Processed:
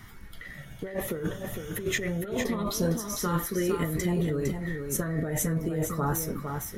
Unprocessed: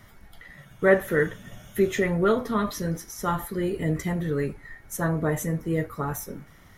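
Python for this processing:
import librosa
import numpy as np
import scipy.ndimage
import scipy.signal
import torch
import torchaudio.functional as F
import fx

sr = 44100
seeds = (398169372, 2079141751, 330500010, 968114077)

y = fx.low_shelf(x, sr, hz=230.0, db=-6.5, at=(2.84, 3.84))
y = fx.over_compress(y, sr, threshold_db=-29.0, ratio=-1.0)
y = fx.filter_lfo_notch(y, sr, shape='saw_up', hz=0.65, low_hz=550.0, high_hz=2500.0, q=1.7)
y = y + 10.0 ** (-6.0 / 20.0) * np.pad(y, (int(457 * sr / 1000.0), 0))[:len(y)]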